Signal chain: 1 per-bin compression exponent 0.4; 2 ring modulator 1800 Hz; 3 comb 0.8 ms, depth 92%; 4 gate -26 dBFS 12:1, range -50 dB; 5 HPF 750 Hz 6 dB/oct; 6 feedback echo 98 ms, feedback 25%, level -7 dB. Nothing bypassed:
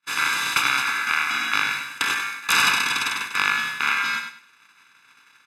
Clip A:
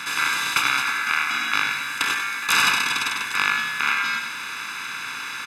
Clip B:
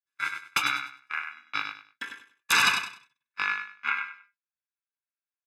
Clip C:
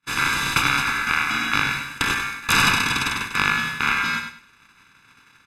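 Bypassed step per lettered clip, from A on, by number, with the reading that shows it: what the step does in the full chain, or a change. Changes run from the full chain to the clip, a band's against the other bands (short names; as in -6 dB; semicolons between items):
4, momentary loudness spread change +5 LU; 1, crest factor change +4.5 dB; 5, 125 Hz band +14.0 dB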